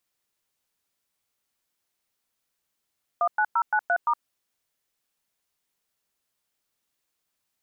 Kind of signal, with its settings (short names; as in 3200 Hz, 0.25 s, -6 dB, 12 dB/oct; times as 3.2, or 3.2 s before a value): DTMF "19093*", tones 66 ms, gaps 0.106 s, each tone -22 dBFS